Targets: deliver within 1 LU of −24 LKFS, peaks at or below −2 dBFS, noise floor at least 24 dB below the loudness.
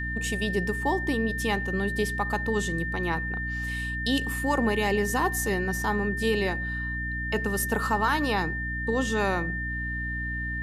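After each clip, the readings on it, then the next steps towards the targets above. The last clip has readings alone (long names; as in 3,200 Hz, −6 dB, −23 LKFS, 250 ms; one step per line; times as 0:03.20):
mains hum 60 Hz; hum harmonics up to 300 Hz; level of the hum −31 dBFS; interfering tone 1,800 Hz; level of the tone −31 dBFS; integrated loudness −27.0 LKFS; sample peak −12.5 dBFS; target loudness −24.0 LKFS
→ hum removal 60 Hz, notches 5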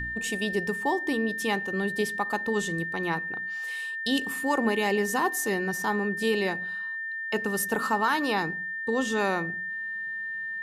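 mains hum none found; interfering tone 1,800 Hz; level of the tone −31 dBFS
→ notch filter 1,800 Hz, Q 30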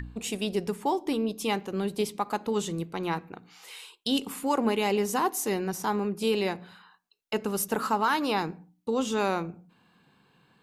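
interfering tone none found; integrated loudness −29.0 LKFS; sample peak −14.0 dBFS; target loudness −24.0 LKFS
→ level +5 dB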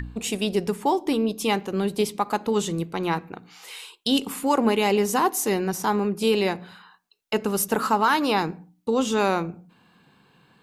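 integrated loudness −24.0 LKFS; sample peak −9.0 dBFS; background noise floor −64 dBFS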